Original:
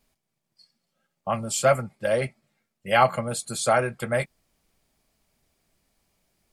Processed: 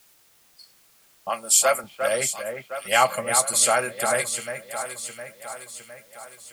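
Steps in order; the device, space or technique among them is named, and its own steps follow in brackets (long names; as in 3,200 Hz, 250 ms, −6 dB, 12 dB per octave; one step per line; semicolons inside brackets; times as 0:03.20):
turntable without a phono preamp (RIAA equalisation recording; white noise bed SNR 32 dB)
0:01.29–0:01.84: high-pass filter 300 Hz 12 dB per octave
delay that swaps between a low-pass and a high-pass 355 ms, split 2,300 Hz, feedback 72%, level −6.5 dB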